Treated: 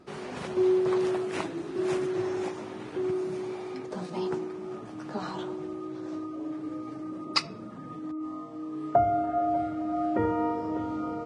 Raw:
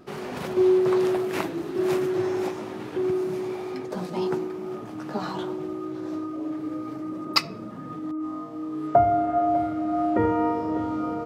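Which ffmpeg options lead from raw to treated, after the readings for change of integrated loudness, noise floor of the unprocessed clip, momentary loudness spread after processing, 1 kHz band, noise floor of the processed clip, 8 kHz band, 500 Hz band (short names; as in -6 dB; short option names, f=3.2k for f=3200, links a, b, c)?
-4.5 dB, -37 dBFS, 13 LU, -4.5 dB, -42 dBFS, -3.0 dB, -4.5 dB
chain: -af "volume=-4.5dB" -ar 22050 -c:a libvorbis -b:a 32k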